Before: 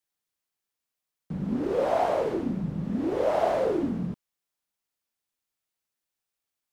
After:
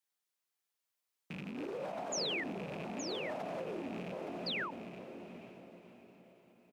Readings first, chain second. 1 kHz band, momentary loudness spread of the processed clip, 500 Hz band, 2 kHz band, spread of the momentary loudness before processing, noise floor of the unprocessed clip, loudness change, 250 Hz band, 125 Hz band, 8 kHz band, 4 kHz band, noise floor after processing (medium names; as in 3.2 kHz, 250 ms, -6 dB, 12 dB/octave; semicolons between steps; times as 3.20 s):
-13.5 dB, 18 LU, -14.0 dB, +0.5 dB, 10 LU, under -85 dBFS, -12.5 dB, -13.0 dB, -14.0 dB, no reading, +7.5 dB, under -85 dBFS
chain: rattle on loud lows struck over -32 dBFS, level -30 dBFS; compressor with a negative ratio -29 dBFS, ratio -1; on a send: echo that smears into a reverb 525 ms, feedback 47%, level -7.5 dB; on the sum: peak limiter -26 dBFS, peak gain reduction 8.5 dB; painted sound fall, 2.12–2.44 s, 1.7–7.2 kHz -33 dBFS; delay 869 ms -7 dB; painted sound fall, 4.46–4.71 s, 820–5100 Hz -33 dBFS; high-pass 370 Hz 6 dB/octave; endings held to a fixed fall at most 100 dB/s; trim -4.5 dB